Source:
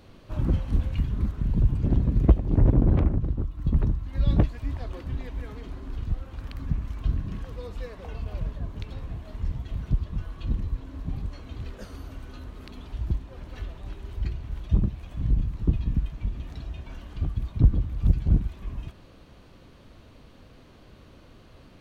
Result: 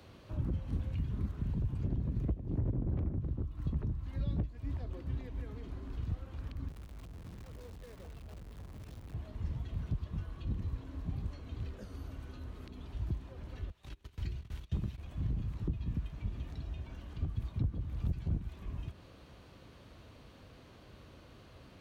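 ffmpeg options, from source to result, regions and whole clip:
-filter_complex "[0:a]asettb=1/sr,asplit=3[a][b][c];[a]atrim=end=6.684[d];[b]atrim=start=6.68:end=9.14,asetpts=PTS-STARTPTS,afade=t=in:d=0.004:c=qsin,afade=t=out:st=2.456:d=0.004:c=qsin,acompressor=threshold=-33dB:ratio=20:attack=3.2:release=140:knee=1:detection=peak,acrusher=bits=8:dc=4:mix=0:aa=0.000001,asoftclip=type=hard:threshold=-39.5dB[e];[c]atrim=start=9.136[f];[d][e]acrossfade=d=0.004:c1=hsin:c2=qsin[g];[g][f]acrossfade=d=0.004:c1=qsin:c2=hsin,asettb=1/sr,asplit=3[h][i][j];[h]atrim=end=13.704[k];[i]atrim=start=13.7:end=14.98,asetpts=PTS-STARTPTS,afade=t=in:d=0.004:c=qsin,afade=t=out:st=1.276:d=0.004:c=qsin,agate=range=-22dB:threshold=-35dB:ratio=16:release=100:detection=peak,tiltshelf=f=1.2k:g=-8,acontrast=39[l];[j]atrim=start=14.976[m];[k][l]acrossfade=d=0.004:c1=hsin:c2=qsin[n];[n][m]acrossfade=d=0.004:c1=qsin:c2=hsin,highpass=58,equalizer=f=230:w=0.83:g=-4,acrossover=split=95|430[o][p][q];[o]acompressor=threshold=-35dB:ratio=4[r];[p]acompressor=threshold=-35dB:ratio=4[s];[q]acompressor=threshold=-57dB:ratio=4[t];[r][s][t]amix=inputs=3:normalize=0,volume=-1dB"

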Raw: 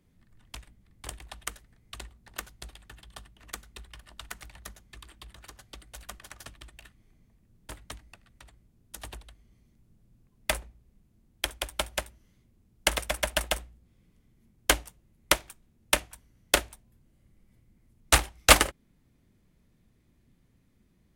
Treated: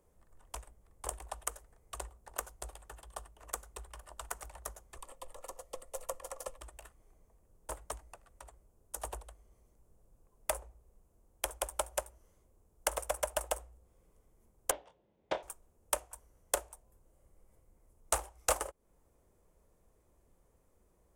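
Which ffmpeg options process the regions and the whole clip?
-filter_complex "[0:a]asettb=1/sr,asplit=3[a][b][c];[a]atrim=end=4.974[d];[b]atrim=start=4.97:end=6.6,asetpts=PTS-STARTPTS,afade=t=in:d=0.004:c=qsin,afade=t=out:st=1.626:d=0.004:c=qsin,asuperstop=centerf=1600:order=8:qfactor=6,equalizer=f=590:t=o:w=0.23:g=10,afreqshift=-64[e];[c]atrim=start=6.596[f];[d][e]acrossfade=d=0.004:c1=hsin:c2=qsin[g];[g][f]acrossfade=d=0.004:c1=qsin:c2=hsin,asettb=1/sr,asplit=3[h][i][j];[h]atrim=end=14.714[k];[i]atrim=start=14.71:end=15.43,asetpts=PTS-STARTPTS,afade=t=in:d=0.004:c=qsin,afade=t=out:st=0.716:d=0.004:c=qsin,aeval=exprs='0.106*(abs(mod(val(0)/0.106+3,4)-2)-1)':c=same,highpass=130,equalizer=f=200:t=q:w=4:g=5,equalizer=f=1.2k:t=q:w=4:g=-9,equalizer=f=3.5k:t=q:w=4:g=7,lowpass=f=3.8k:w=0.5412,lowpass=f=3.8k:w=1.3066,asplit=2[l][m];[m]adelay=24,volume=-7dB[n];[l][n]amix=inputs=2:normalize=0,atrim=end_sample=31752[o];[j]atrim=start=15.426[p];[k][o]acrossfade=d=0.004:c1=hsin:c2=qsin[q];[q][p]acrossfade=d=0.004:c1=qsin:c2=hsin,equalizer=f=125:t=o:w=1:g=-10,equalizer=f=250:t=o:w=1:g=-10,equalizer=f=500:t=o:w=1:g=9,equalizer=f=1k:t=o:w=1:g=6,equalizer=f=2k:t=o:w=1:g=-7,equalizer=f=4k:t=o:w=1:g=-11,equalizer=f=8k:t=o:w=1:g=6,acompressor=threshold=-31dB:ratio=4,equalizer=f=200:t=o:w=0.25:g=-2.5"

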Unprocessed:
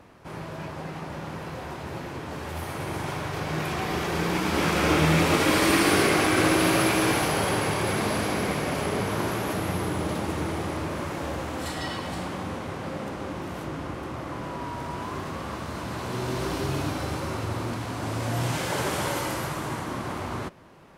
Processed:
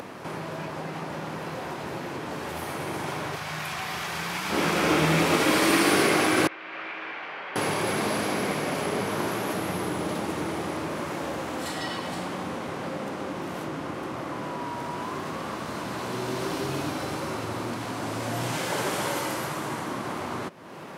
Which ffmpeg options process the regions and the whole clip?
-filter_complex "[0:a]asettb=1/sr,asplit=3[a][b][c];[a]atrim=end=3.364[d];[b]atrim=start=3.36:end=4.5,asetpts=PTS-STARTPTS,afade=t=in:d=0.004:c=qsin,afade=t=out:st=1.136:d=0.004:c=qsin,equalizer=f=320:t=o:w=1.7:g=-15,bandreject=f=500:w=12[e];[c]atrim=start=4.496[f];[d][e]acrossfade=d=0.004:c1=hsin:c2=qsin[g];[g][f]acrossfade=d=0.004:c1=qsin:c2=hsin,asettb=1/sr,asplit=3[h][i][j];[h]atrim=end=6.474[k];[i]atrim=start=6.47:end=7.56,asetpts=PTS-STARTPTS,afade=t=in:d=0.004:c=qsin,afade=t=out:st=1.086:d=0.004:c=qsin,lowpass=f=2.3k:w=0.5412,lowpass=f=2.3k:w=1.3066,aderivative[l];[j]atrim=start=7.556[m];[k][l]acrossfade=d=0.004:c1=hsin:c2=qsin[n];[n][m]acrossfade=d=0.004:c1=qsin:c2=hsin,highpass=160,acompressor=mode=upward:threshold=-28dB:ratio=2.5"

